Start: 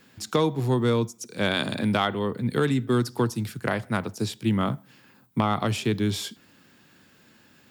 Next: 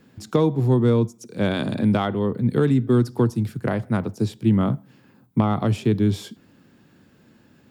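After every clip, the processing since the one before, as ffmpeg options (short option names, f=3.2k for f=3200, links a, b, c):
-af "tiltshelf=f=840:g=6.5"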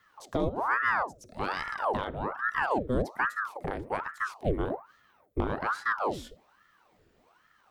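-af "bandreject=f=50:t=h:w=6,bandreject=f=100:t=h:w=6,bandreject=f=150:t=h:w=6,bandreject=f=200:t=h:w=6,bandreject=f=250:t=h:w=6,bandreject=f=300:t=h:w=6,bandreject=f=350:t=h:w=6,aeval=exprs='val(0)*sin(2*PI*850*n/s+850*0.85/1.2*sin(2*PI*1.2*n/s))':c=same,volume=-6.5dB"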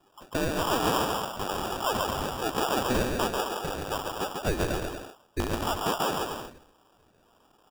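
-af "aecho=1:1:140|238|306.6|354.6|388.2:0.631|0.398|0.251|0.158|0.1,acrusher=samples=21:mix=1:aa=0.000001"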